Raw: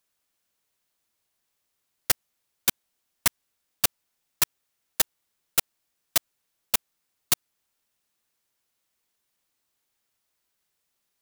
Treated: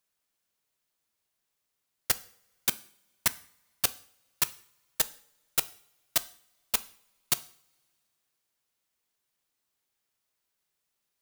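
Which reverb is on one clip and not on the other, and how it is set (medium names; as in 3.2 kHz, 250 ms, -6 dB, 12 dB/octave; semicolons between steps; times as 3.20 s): two-slope reverb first 0.5 s, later 2.6 s, from -26 dB, DRR 13.5 dB; trim -4 dB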